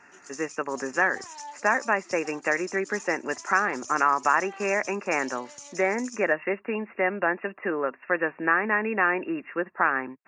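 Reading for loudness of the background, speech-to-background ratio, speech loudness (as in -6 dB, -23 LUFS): -42.5 LUFS, 16.0 dB, -26.5 LUFS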